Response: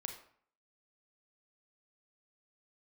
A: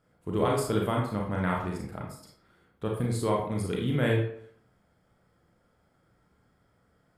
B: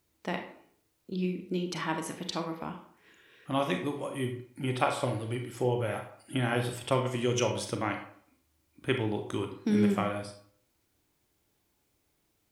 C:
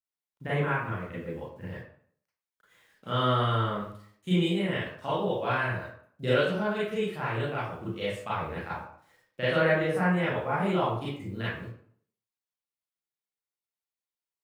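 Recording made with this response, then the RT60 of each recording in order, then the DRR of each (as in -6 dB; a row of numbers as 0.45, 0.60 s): B; 0.55, 0.55, 0.55 s; -1.5, 4.5, -10.5 dB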